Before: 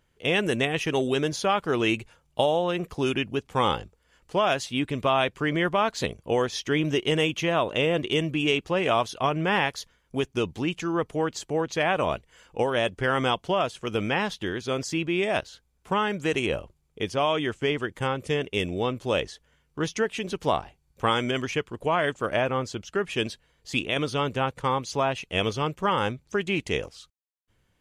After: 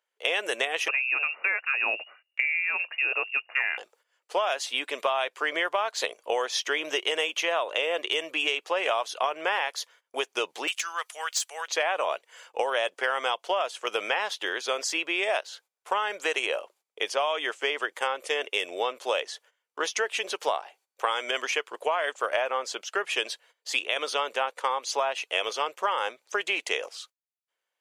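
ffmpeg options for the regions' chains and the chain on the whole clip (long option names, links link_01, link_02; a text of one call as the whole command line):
ffmpeg -i in.wav -filter_complex "[0:a]asettb=1/sr,asplit=3[link_01][link_02][link_03];[link_01]atrim=end=0.884[link_04];[link_02]atrim=start=0.88:end=3.78,asetpts=PTS-STARTPTS,afade=type=in:duration=0.004:curve=qsin,afade=type=out:start_time=2.896:duration=0.004:curve=qsin,lowpass=frequency=2500:width_type=q:width=0.5098,lowpass=frequency=2500:width_type=q:width=0.6013,lowpass=frequency=2500:width_type=q:width=0.9,lowpass=frequency=2500:width_type=q:width=2.563,afreqshift=-2900,deesser=0.35,aemphasis=mode=reproduction:type=riaa[link_05];[link_03]atrim=start=3.776[link_06];[link_04][link_05]acrossfade=duration=0.004:curve1=hsin:curve2=qsin[link_07];[link_07][link_06]acrossfade=duration=0.004:curve1=qsin:curve2=hsin,asettb=1/sr,asplit=3[link_08][link_09][link_10];[link_08]atrim=end=10.674[link_11];[link_09]atrim=start=10.67:end=11.68,asetpts=PTS-STARTPTS,afade=type=in:duration=0.004:curve=qsin,afade=type=out:start_time=1.006:duration=0.004:curve=qsin,highpass=1500,highshelf=frequency=5400:gain=9.5,asoftclip=type=hard:threshold=-25.5dB[link_12];[link_10]atrim=start=11.676[link_13];[link_11][link_12]acrossfade=duration=0.004:curve1=hsin:curve2=qsin[link_14];[link_14][link_13]acrossfade=duration=0.004:curve1=qsin:curve2=hsin,agate=range=-16dB:threshold=-56dB:ratio=16:detection=peak,highpass=frequency=520:width=0.5412,highpass=frequency=520:width=1.3066,acompressor=threshold=-29dB:ratio=6,volume=6dB" out.wav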